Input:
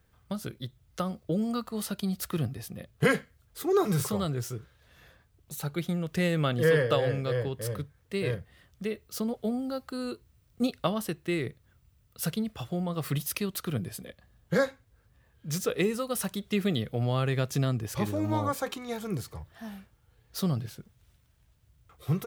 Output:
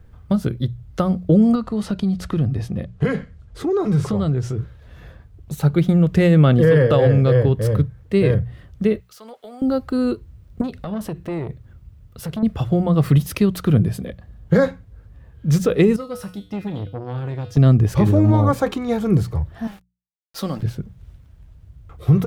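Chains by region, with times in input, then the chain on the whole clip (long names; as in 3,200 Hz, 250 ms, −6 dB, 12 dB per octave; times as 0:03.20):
0:01.55–0:04.58: low-pass filter 8,100 Hz + downward compressor 2.5 to 1, threshold −35 dBFS
0:09.00–0:09.62: high-pass filter 1,100 Hz + downward compressor 3 to 1, threshold −47 dBFS
0:10.61–0:12.43: downward compressor 5 to 1, threshold −34 dBFS + saturating transformer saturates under 1,100 Hz
0:15.96–0:17.57: parametric band 5,200 Hz +6.5 dB 0.39 octaves + tuned comb filter 98 Hz, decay 0.4 s, harmonics odd, mix 80% + saturating transformer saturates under 730 Hz
0:19.67–0:20.63: high-pass filter 810 Hz 6 dB per octave + comb filter 3.7 ms, depth 40% + centre clipping without the shift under −49 dBFS
whole clip: spectral tilt −3 dB per octave; mains-hum notches 60/120/180 Hz; boost into a limiter +15 dB; level −5 dB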